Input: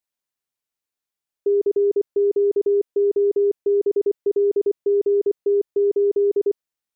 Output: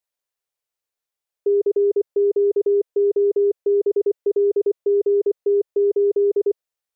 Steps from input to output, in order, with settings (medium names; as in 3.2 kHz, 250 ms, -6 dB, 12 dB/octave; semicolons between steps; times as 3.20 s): graphic EQ 125/250/500 Hz -3/-10/+6 dB